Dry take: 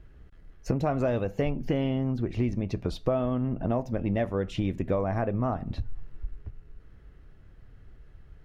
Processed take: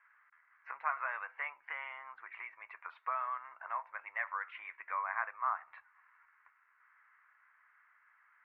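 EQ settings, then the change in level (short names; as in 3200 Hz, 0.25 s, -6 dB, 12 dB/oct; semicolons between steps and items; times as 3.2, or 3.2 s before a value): elliptic band-pass 1000–2200 Hz, stop band 70 dB; +5.5 dB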